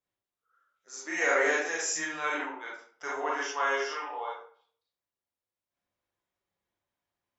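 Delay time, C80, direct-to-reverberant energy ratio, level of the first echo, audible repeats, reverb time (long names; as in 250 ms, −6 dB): no echo audible, 6.0 dB, −5.5 dB, no echo audible, no echo audible, 0.50 s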